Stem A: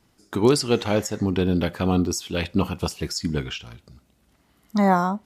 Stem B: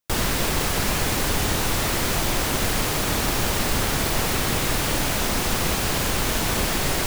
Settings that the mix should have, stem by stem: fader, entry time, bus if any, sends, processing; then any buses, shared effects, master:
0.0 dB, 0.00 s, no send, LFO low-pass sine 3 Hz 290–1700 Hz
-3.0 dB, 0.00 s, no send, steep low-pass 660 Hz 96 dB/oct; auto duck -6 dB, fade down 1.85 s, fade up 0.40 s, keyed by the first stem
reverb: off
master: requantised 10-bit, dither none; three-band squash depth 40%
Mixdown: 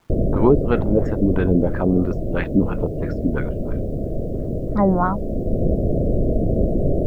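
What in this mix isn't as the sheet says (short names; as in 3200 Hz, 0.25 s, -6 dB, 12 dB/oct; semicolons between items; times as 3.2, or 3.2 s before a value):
stem B -3.0 dB -> +7.5 dB; master: missing three-band squash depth 40%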